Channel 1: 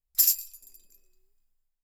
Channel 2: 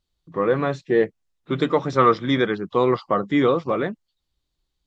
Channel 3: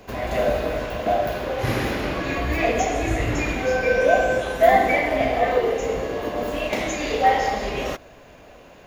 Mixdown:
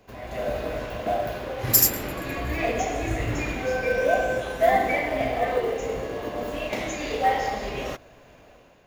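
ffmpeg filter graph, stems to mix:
ffmpeg -i stem1.wav -i stem2.wav -i stem3.wav -filter_complex "[0:a]adelay=1550,volume=-1dB[link_01];[2:a]equalizer=frequency=120:width_type=o:width=0.36:gain=3.5,volume=-11dB[link_02];[link_01][link_02]amix=inputs=2:normalize=0,dynaudnorm=framelen=190:gausssize=5:maxgain=6.5dB,acrusher=bits=8:mode=log:mix=0:aa=0.000001" out.wav

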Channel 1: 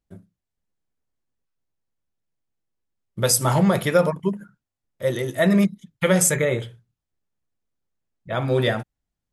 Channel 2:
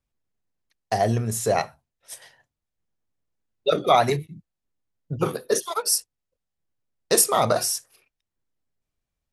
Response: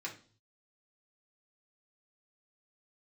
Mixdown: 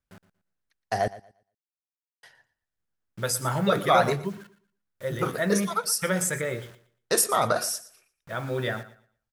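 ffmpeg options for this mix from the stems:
-filter_complex "[0:a]acrusher=bits=6:mix=0:aa=0.000001,volume=-9dB,asplit=2[link_01][link_02];[link_02]volume=-16dB[link_03];[1:a]volume=-4.5dB,asplit=3[link_04][link_05][link_06];[link_04]atrim=end=1.08,asetpts=PTS-STARTPTS,afade=type=out:start_time=1.076:duration=0.004:curve=hsin[link_07];[link_05]atrim=start=1.08:end=2.23,asetpts=PTS-STARTPTS,volume=0[link_08];[link_06]atrim=start=2.23,asetpts=PTS-STARTPTS,afade=type=in:duration=0.004:curve=hsin[link_09];[link_07][link_08][link_09]concat=n=3:v=0:a=1,asplit=2[link_10][link_11];[link_11]volume=-18dB[link_12];[link_03][link_12]amix=inputs=2:normalize=0,aecho=0:1:117|234|351|468:1|0.23|0.0529|0.0122[link_13];[link_01][link_10][link_13]amix=inputs=3:normalize=0,equalizer=frequency=1500:width_type=o:width=0.6:gain=7.5"

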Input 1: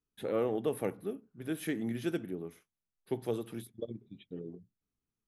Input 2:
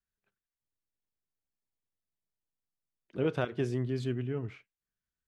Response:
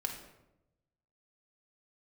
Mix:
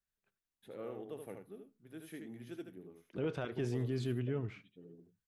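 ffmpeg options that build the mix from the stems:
-filter_complex "[0:a]adelay=450,volume=-14dB,asplit=2[link_01][link_02];[link_02]volume=-5.5dB[link_03];[1:a]alimiter=level_in=1.5dB:limit=-24dB:level=0:latency=1:release=12,volume=-1.5dB,volume=-1.5dB,asplit=2[link_04][link_05];[link_05]volume=-23.5dB[link_06];[link_03][link_06]amix=inputs=2:normalize=0,aecho=0:1:76:1[link_07];[link_01][link_04][link_07]amix=inputs=3:normalize=0"

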